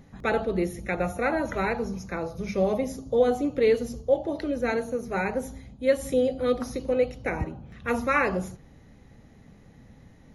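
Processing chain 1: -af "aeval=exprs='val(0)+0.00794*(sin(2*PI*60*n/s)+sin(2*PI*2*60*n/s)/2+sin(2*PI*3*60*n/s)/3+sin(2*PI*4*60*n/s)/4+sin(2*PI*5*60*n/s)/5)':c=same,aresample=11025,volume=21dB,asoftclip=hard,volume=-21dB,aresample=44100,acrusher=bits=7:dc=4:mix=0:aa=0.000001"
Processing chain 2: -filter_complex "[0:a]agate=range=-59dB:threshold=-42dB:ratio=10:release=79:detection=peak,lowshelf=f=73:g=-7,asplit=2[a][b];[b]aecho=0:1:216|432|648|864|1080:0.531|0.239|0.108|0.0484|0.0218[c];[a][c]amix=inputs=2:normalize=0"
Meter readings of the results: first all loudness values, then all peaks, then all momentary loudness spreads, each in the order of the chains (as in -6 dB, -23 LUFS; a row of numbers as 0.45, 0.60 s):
-28.5, -26.0 LUFS; -18.0, -10.0 dBFS; 21, 9 LU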